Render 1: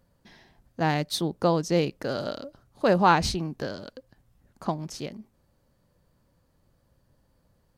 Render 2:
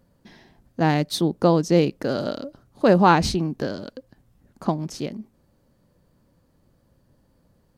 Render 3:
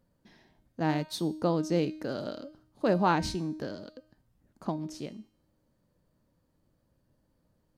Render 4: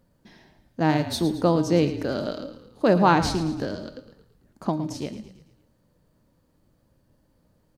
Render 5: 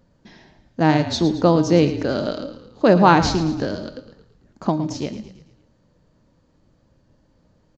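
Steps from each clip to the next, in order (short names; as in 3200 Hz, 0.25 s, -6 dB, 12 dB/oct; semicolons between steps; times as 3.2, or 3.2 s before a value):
bell 260 Hz +6 dB 1.8 oct; gain +2 dB
resonator 310 Hz, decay 0.64 s, mix 70%
frequency-shifting echo 0.111 s, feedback 50%, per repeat -30 Hz, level -12.5 dB; gain +7 dB
downsampling 16000 Hz; gain +5 dB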